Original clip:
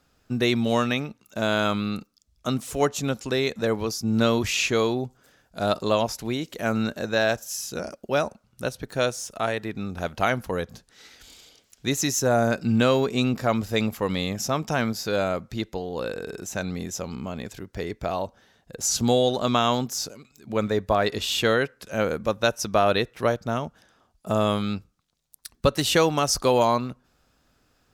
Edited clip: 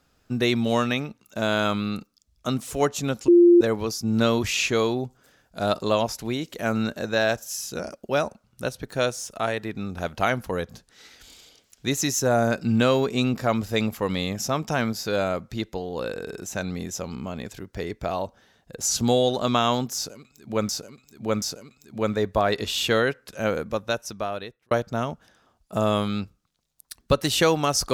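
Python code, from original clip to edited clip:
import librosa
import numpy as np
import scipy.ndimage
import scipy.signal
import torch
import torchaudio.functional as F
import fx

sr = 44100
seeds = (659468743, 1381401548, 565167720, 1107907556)

y = fx.edit(x, sr, fx.bleep(start_s=3.28, length_s=0.33, hz=347.0, db=-10.0),
    fx.repeat(start_s=19.96, length_s=0.73, count=3),
    fx.fade_out_span(start_s=21.97, length_s=1.28), tone=tone)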